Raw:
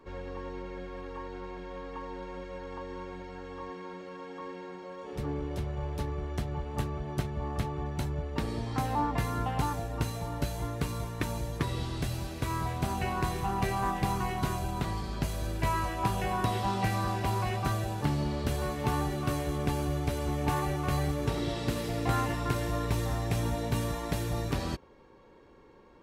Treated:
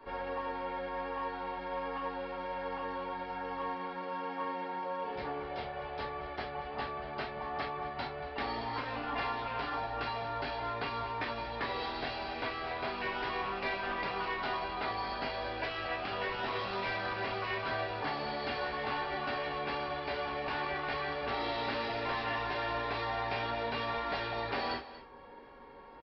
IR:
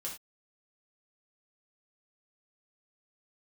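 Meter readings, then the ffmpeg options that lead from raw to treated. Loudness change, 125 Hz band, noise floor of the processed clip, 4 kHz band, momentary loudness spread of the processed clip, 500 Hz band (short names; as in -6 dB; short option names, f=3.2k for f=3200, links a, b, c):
-3.5 dB, -16.5 dB, -45 dBFS, +1.5 dB, 5 LU, -1.0 dB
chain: -filter_complex "[0:a]acrossover=split=360[a][b];[a]acompressor=threshold=-45dB:ratio=10[c];[b]asplit=2[d][e];[e]highpass=f=720:p=1,volume=15dB,asoftclip=type=tanh:threshold=-18dB[f];[d][f]amix=inputs=2:normalize=0,lowpass=f=2k:p=1,volume=-6dB[g];[c][g]amix=inputs=2:normalize=0,aecho=1:1:234:0.158[h];[1:a]atrim=start_sample=2205,asetrate=66150,aresample=44100[i];[h][i]afir=irnorm=-1:irlink=0,aresample=11025,asoftclip=type=tanh:threshold=-28dB,aresample=44100,afftfilt=real='re*lt(hypot(re,im),0.1)':imag='im*lt(hypot(re,im),0.1)':win_size=1024:overlap=0.75,volume=4dB"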